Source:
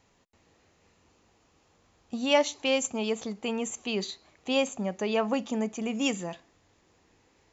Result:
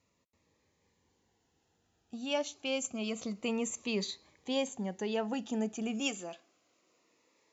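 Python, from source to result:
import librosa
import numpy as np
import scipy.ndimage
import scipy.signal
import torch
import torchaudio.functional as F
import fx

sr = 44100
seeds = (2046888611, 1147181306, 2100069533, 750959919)

y = fx.highpass(x, sr, hz=fx.steps((0.0, 54.0), (6.0, 330.0)), slope=12)
y = fx.rider(y, sr, range_db=4, speed_s=0.5)
y = fx.notch_cascade(y, sr, direction='falling', hz=0.28)
y = y * 10.0 ** (-4.5 / 20.0)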